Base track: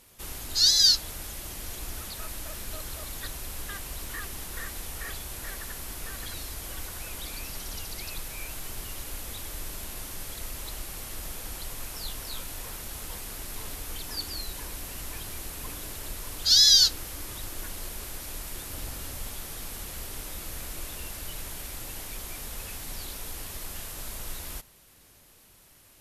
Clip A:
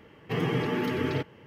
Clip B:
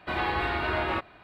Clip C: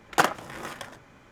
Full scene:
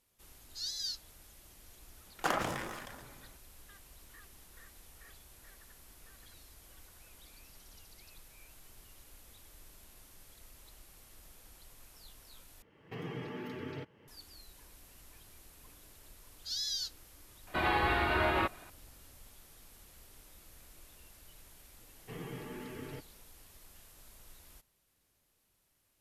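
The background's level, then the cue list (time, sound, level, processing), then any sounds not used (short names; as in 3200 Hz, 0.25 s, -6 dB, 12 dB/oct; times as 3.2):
base track -19 dB
2.06 add C -13 dB + sustainer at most 32 dB/s
12.62 replace with A -14 dB + recorder AGC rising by 27 dB/s
17.47 add B -1.5 dB
21.78 add A -16.5 dB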